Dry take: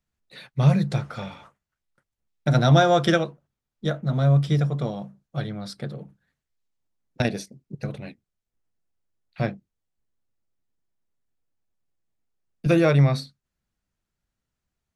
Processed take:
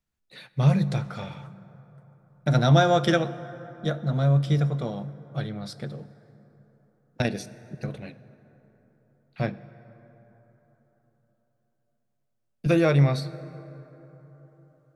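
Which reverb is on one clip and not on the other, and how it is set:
dense smooth reverb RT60 4.1 s, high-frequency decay 0.4×, DRR 15 dB
level −2 dB

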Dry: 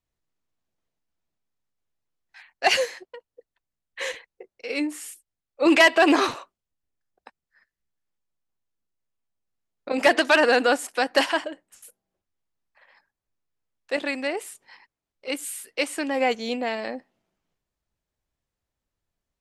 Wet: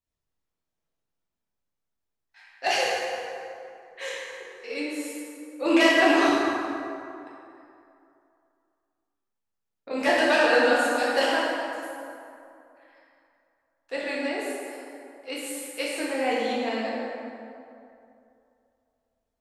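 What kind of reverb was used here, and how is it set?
dense smooth reverb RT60 2.6 s, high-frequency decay 0.55×, DRR −6.5 dB
level −8.5 dB

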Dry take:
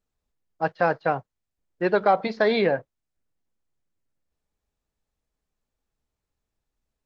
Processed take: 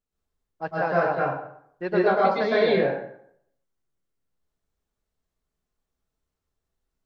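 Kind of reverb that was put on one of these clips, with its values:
dense smooth reverb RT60 0.68 s, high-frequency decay 0.7×, pre-delay 100 ms, DRR −6.5 dB
level −7 dB

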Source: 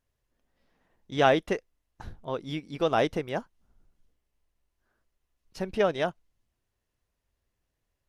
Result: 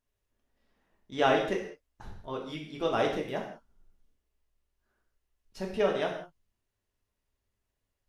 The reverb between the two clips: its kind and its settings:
reverb whose tail is shaped and stops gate 220 ms falling, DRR −0.5 dB
level −5.5 dB

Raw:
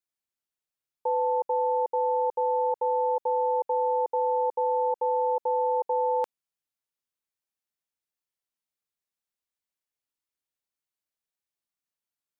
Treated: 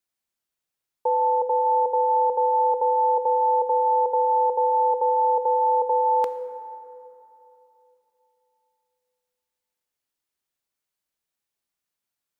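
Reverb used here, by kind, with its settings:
dense smooth reverb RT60 3.1 s, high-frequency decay 0.4×, DRR 9 dB
level +5 dB

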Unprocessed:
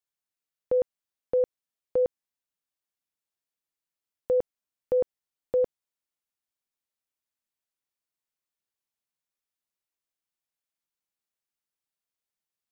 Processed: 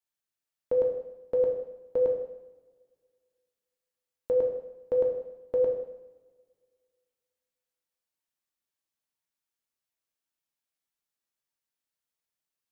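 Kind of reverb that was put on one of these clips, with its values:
coupled-rooms reverb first 0.85 s, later 2.2 s, from −20 dB, DRR 0.5 dB
level −2.5 dB

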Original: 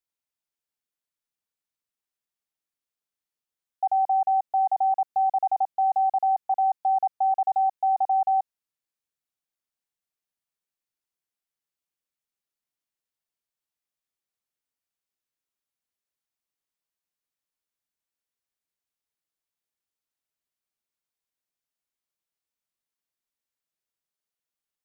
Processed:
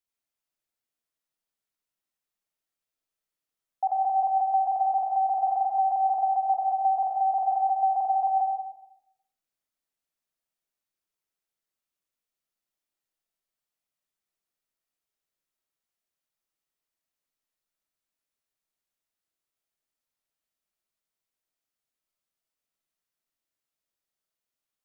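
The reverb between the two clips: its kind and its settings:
comb and all-pass reverb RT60 0.82 s, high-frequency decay 0.3×, pre-delay 40 ms, DRR 0 dB
level −1.5 dB

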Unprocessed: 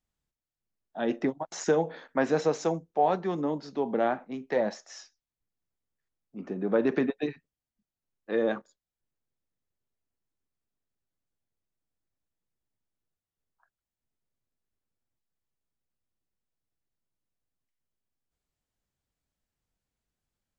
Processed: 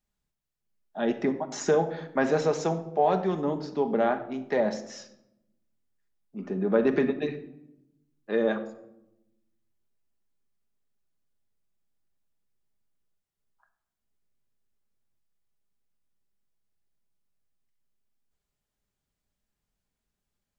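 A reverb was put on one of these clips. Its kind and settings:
rectangular room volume 2,700 cubic metres, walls furnished, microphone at 1.3 metres
level +1 dB

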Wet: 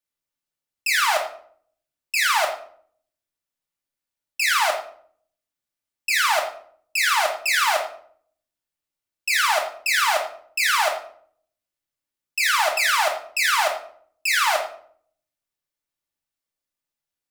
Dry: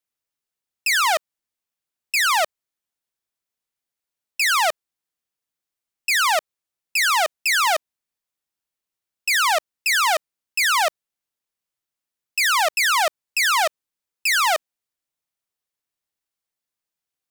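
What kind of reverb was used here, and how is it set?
rectangular room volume 770 cubic metres, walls furnished, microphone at 2.5 metres
level −4 dB

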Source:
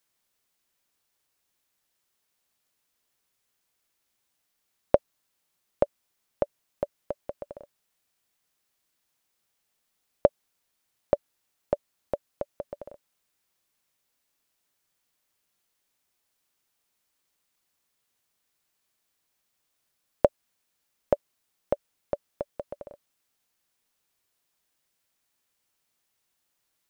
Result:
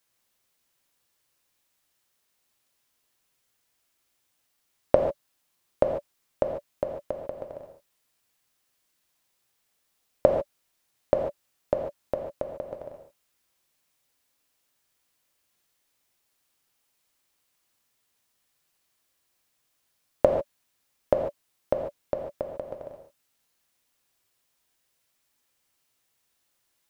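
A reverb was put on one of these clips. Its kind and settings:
reverb whose tail is shaped and stops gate 170 ms flat, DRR 2 dB
level +1 dB

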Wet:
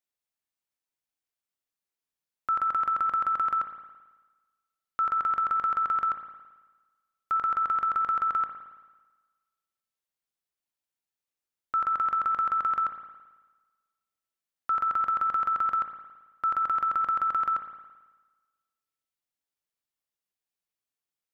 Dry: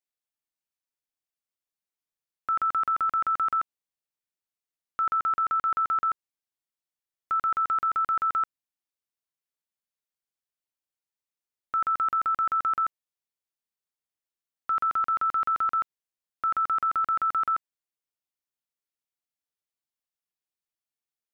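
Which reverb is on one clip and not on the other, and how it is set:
spring reverb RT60 1.3 s, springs 55 ms, chirp 40 ms, DRR 7 dB

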